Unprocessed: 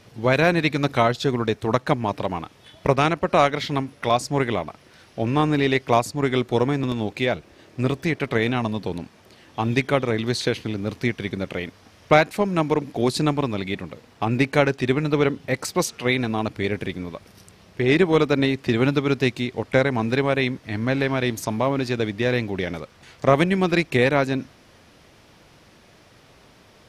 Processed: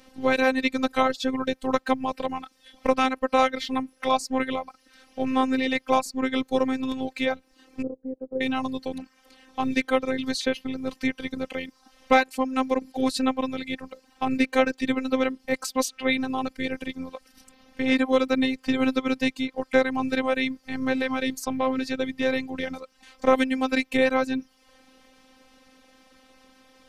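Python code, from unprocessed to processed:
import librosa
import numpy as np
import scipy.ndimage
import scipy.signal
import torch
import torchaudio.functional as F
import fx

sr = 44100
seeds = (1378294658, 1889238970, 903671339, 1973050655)

y = fx.dereverb_blind(x, sr, rt60_s=0.58)
y = fx.ladder_lowpass(y, sr, hz=530.0, resonance_pct=55, at=(7.82, 8.41))
y = fx.robotise(y, sr, hz=261.0)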